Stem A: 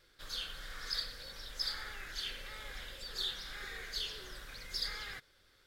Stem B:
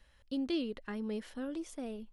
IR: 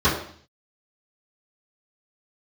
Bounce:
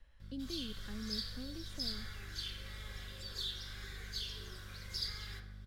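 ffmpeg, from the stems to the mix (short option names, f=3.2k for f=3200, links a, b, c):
-filter_complex "[0:a]lowshelf=f=210:g=-10.5,aeval=exprs='val(0)+0.00158*(sin(2*PI*50*n/s)+sin(2*PI*2*50*n/s)/2+sin(2*PI*3*50*n/s)/3+sin(2*PI*4*50*n/s)/4+sin(2*PI*5*50*n/s)/5)':c=same,adelay=200,volume=-2.5dB,asplit=2[a][b];[b]volume=-17.5dB[c];[1:a]highshelf=f=6.4k:g=-9.5,volume=-4.5dB[d];[2:a]atrim=start_sample=2205[e];[c][e]afir=irnorm=-1:irlink=0[f];[a][d][f]amix=inputs=3:normalize=0,lowshelf=f=65:g=11,acrossover=split=260|3000[g][h][i];[h]acompressor=threshold=-54dB:ratio=4[j];[g][j][i]amix=inputs=3:normalize=0"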